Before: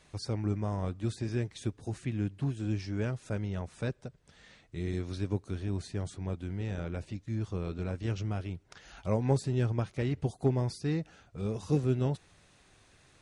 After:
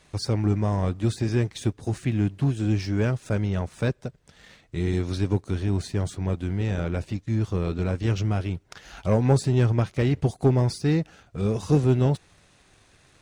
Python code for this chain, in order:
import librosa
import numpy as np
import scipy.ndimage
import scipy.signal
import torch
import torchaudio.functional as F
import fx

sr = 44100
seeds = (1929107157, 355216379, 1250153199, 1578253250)

y = fx.leveller(x, sr, passes=1)
y = y * librosa.db_to_amplitude(5.5)